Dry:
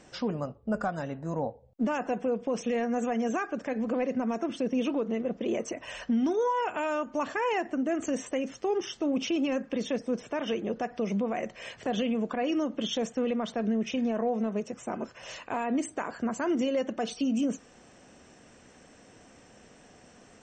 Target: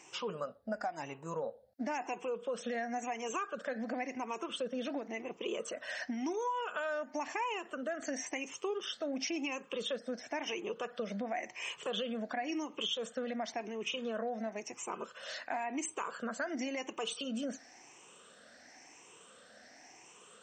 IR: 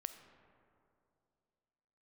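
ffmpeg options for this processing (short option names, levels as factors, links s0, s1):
-af "afftfilt=real='re*pow(10,13/40*sin(2*PI*(0.71*log(max(b,1)*sr/1024/100)/log(2)-(0.95)*(pts-256)/sr)))':imag='im*pow(10,13/40*sin(2*PI*(0.71*log(max(b,1)*sr/1024/100)/log(2)-(0.95)*(pts-256)/sr)))':win_size=1024:overlap=0.75,highpass=f=980:p=1,acompressor=threshold=0.0224:ratio=6"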